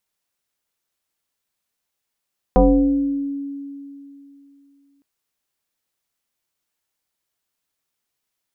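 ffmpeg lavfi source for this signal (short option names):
-f lavfi -i "aevalsrc='0.398*pow(10,-3*t/2.96)*sin(2*PI*280*t+2.2*pow(10,-3*t/1.13)*sin(2*PI*0.84*280*t))':d=2.46:s=44100"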